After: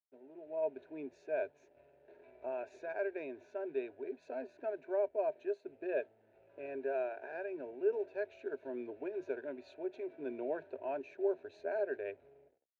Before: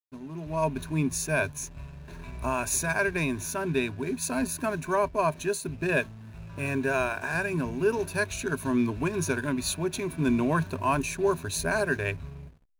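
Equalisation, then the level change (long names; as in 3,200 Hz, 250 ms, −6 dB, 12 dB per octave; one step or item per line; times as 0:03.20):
four-pole ladder band-pass 700 Hz, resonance 20%
high-frequency loss of the air 120 metres
phaser with its sweep stopped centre 450 Hz, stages 4
+6.5 dB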